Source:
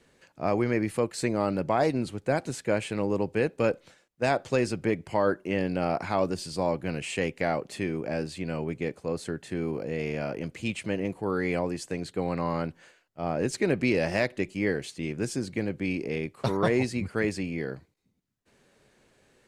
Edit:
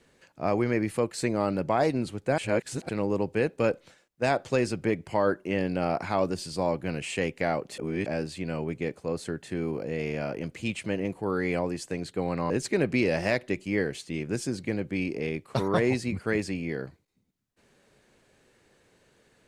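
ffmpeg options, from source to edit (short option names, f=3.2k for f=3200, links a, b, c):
-filter_complex "[0:a]asplit=6[a][b][c][d][e][f];[a]atrim=end=2.382[g];[b]atrim=start=2.378:end=2.892,asetpts=PTS-STARTPTS,areverse[h];[c]atrim=start=2.888:end=7.782[i];[d]atrim=start=7.778:end=8.062,asetpts=PTS-STARTPTS,areverse[j];[e]atrim=start=8.058:end=12.502[k];[f]atrim=start=13.388[l];[g][h]acrossfade=d=0.004:c1=hsin:c2=hsin[m];[m][i]acrossfade=d=0.004:c1=hsin:c2=hsin[n];[n][j]acrossfade=d=0.004:c1=hsin:c2=hsin[o];[o][k]acrossfade=d=0.004:c1=hsin:c2=hsin[p];[p][l]acrossfade=d=0.004:c1=hsin:c2=hsin"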